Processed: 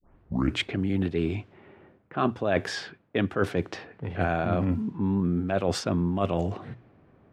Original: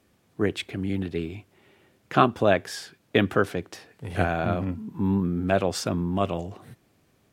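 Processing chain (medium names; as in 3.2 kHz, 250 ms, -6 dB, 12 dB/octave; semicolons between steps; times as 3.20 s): tape start-up on the opening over 0.63 s; treble shelf 5.5 kHz -11 dB; hum notches 60/120 Hz; reverse; compression 10:1, threshold -29 dBFS, peak gain reduction 17 dB; reverse; level-controlled noise filter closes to 1.4 kHz, open at -29 dBFS; trim +7.5 dB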